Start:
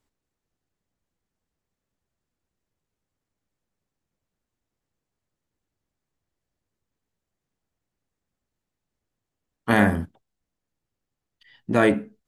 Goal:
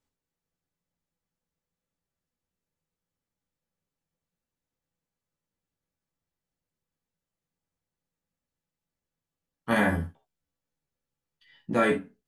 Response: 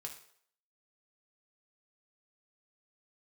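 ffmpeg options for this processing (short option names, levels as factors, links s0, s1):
-filter_complex "[0:a]asettb=1/sr,asplit=3[s0][s1][s2];[s0]atrim=end=9.704[s3];[s1]atrim=start=9.7:end=11.92,asetpts=PTS-STARTPTS,afade=t=in:d=0.004:c=qsin,afade=t=out:st=2.216:d=0.004:c=qsin,asplit=2[s4][s5];[s5]adelay=14,volume=0.631[s6];[s4][s6]amix=inputs=2:normalize=0,atrim=end_sample=97902[s7];[s2]atrim=start=11.916[s8];[s3][s7]acrossfade=d=0.004:c1=hsin:c2=qsin[s9];[s9][s8]acrossfade=d=0.004:c1=qsin:c2=hsin[s10];[1:a]atrim=start_sample=2205,atrim=end_sample=4410,asetrate=52920,aresample=44100[s11];[s10][s11]afir=irnorm=-1:irlink=0"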